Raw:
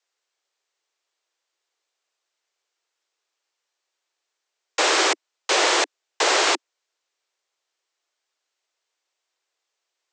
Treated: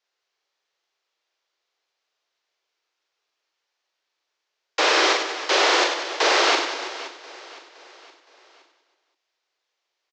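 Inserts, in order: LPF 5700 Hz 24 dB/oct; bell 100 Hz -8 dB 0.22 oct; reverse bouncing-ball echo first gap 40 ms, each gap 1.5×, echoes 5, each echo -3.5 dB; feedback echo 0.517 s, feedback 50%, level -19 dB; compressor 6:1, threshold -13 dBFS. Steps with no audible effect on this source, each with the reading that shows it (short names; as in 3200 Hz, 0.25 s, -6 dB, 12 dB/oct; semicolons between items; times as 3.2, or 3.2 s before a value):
bell 100 Hz: input band starts at 250 Hz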